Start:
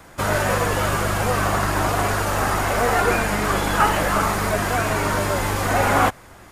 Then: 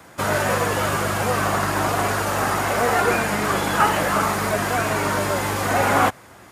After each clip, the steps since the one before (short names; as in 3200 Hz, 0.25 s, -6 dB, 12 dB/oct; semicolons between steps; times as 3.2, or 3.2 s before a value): HPF 100 Hz 12 dB/oct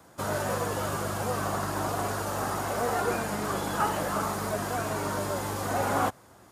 bell 2200 Hz -8 dB 1.1 oct; gain -7.5 dB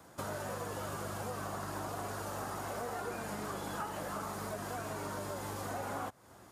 compressor 4:1, threshold -36 dBFS, peak gain reduction 12.5 dB; gain -2 dB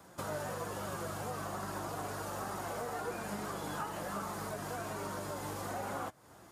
flange 1.2 Hz, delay 5 ms, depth 1.9 ms, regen +67%; gain +4.5 dB